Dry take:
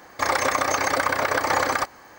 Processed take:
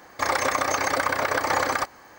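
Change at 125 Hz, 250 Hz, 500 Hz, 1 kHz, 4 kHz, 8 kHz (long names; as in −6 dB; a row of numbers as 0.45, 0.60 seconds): −1.5, −1.5, −1.5, −1.5, −1.5, −1.5 decibels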